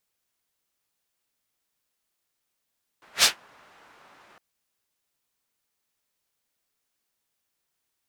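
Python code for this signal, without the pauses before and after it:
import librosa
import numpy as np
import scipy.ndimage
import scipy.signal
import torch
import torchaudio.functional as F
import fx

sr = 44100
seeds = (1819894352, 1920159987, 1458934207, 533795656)

y = fx.whoosh(sr, seeds[0], length_s=1.36, peak_s=0.22, rise_s=0.12, fall_s=0.14, ends_hz=1200.0, peak_hz=4700.0, q=0.99, swell_db=39.0)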